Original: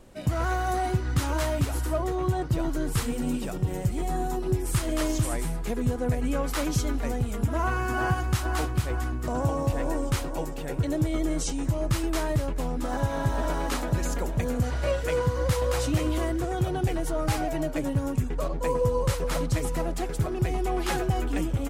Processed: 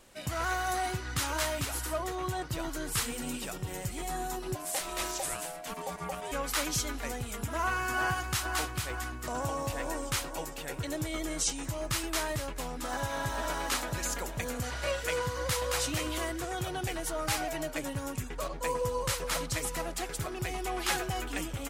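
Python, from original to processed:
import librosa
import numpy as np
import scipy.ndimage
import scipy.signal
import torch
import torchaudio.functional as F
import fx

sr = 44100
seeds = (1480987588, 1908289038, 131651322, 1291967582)

y = fx.tilt_shelf(x, sr, db=-7.5, hz=760.0)
y = fx.ring_mod(y, sr, carrier_hz=670.0, at=(4.54, 6.31), fade=0.02)
y = y * librosa.db_to_amplitude(-4.0)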